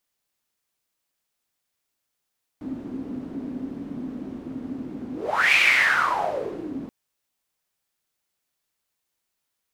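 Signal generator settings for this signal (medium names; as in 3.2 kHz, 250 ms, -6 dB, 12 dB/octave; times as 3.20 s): whoosh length 4.28 s, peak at 2.94 s, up 0.45 s, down 1.33 s, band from 260 Hz, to 2.4 kHz, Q 7.3, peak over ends 15.5 dB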